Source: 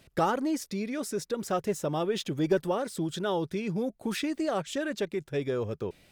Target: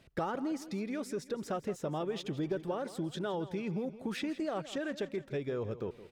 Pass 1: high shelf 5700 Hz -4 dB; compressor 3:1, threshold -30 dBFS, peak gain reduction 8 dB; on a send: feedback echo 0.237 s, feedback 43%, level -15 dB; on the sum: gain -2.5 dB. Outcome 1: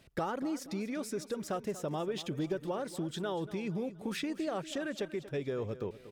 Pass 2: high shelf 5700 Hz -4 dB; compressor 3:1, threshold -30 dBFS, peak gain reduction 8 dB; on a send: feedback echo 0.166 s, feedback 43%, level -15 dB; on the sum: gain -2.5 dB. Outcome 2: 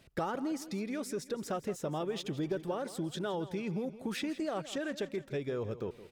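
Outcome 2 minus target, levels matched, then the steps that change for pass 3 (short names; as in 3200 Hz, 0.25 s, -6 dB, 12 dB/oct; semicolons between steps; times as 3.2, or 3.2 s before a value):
8000 Hz band +4.0 dB
change: high shelf 5700 Hz -11 dB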